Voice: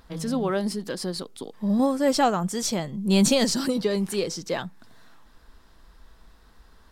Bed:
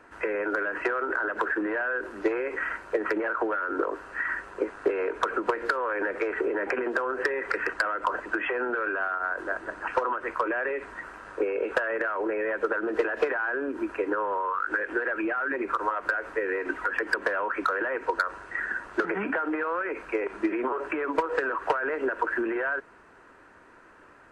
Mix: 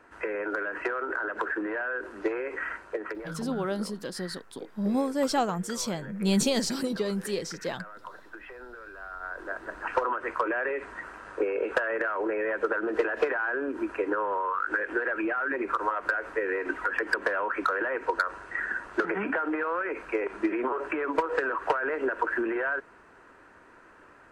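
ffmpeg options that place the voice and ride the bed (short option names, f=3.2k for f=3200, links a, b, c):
-filter_complex "[0:a]adelay=3150,volume=-5dB[a];[1:a]volume=13dB,afade=t=out:st=2.7:d=0.68:silence=0.211349,afade=t=in:st=8.95:d=1.02:silence=0.158489[b];[a][b]amix=inputs=2:normalize=0"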